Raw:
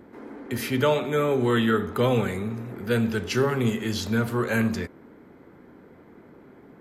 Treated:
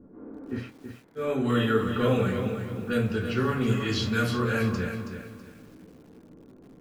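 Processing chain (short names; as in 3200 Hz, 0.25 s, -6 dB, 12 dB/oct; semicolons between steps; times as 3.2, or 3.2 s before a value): low-pass opened by the level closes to 610 Hz, open at -18.5 dBFS; 3.77–4.36 high shelf 2100 Hz +11.5 dB; analogue delay 0.204 s, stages 4096, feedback 60%, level -19.5 dB; reverb RT60 0.25 s, pre-delay 3 ms, DRR -3.5 dB; 0.65–1.23 room tone, crossfade 0.16 s; lo-fi delay 0.325 s, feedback 35%, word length 7-bit, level -8 dB; gain -9 dB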